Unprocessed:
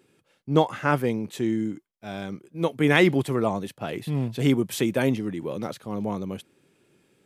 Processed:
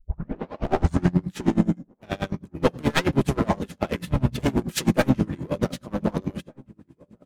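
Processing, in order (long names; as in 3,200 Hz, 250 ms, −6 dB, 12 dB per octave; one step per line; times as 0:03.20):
turntable start at the beginning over 1.40 s
in parallel at −1.5 dB: compressor whose output falls as the input rises −23 dBFS, ratio −0.5
on the sum: hard clipping −18 dBFS, distortion −8 dB
pitch-shifted copies added −12 semitones −5 dB, −4 semitones −5 dB, +3 semitones −15 dB
power curve on the samples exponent 1.4
slap from a distant wall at 260 metres, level −25 dB
on a send at −10.5 dB: convolution reverb RT60 0.40 s, pre-delay 3 ms
on the sum: tremolo with a sine in dB 9.4 Hz, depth 27 dB
level +5.5 dB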